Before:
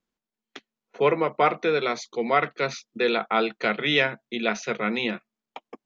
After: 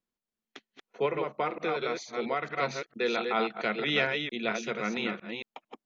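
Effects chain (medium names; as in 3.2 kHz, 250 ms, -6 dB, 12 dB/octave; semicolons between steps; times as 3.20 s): chunks repeated in reverse 226 ms, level -5 dB; 1.05–2.45 s: compression, threshold -20 dBFS, peak gain reduction 6 dB; trim -6 dB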